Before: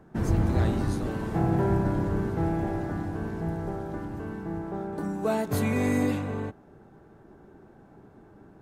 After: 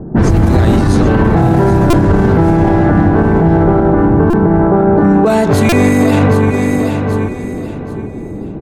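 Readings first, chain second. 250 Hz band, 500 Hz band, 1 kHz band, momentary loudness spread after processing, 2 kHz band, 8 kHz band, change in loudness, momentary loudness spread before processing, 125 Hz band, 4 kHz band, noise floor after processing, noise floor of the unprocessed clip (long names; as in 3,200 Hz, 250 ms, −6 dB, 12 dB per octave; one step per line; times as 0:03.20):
+19.0 dB, +19.0 dB, +19.0 dB, 12 LU, +18.0 dB, +16.0 dB, +18.0 dB, 10 LU, +17.5 dB, +18.0 dB, −24 dBFS, −54 dBFS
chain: low-pass that shuts in the quiet parts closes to 410 Hz, open at −21 dBFS
downward compressor, threshold −29 dBFS, peak gain reduction 10 dB
on a send: repeating echo 778 ms, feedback 29%, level −10.5 dB
on the sum: boost into a limiter +29.5 dB
buffer that repeats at 0:01.90/0:04.30/0:05.69, samples 128, times 10
level −1 dB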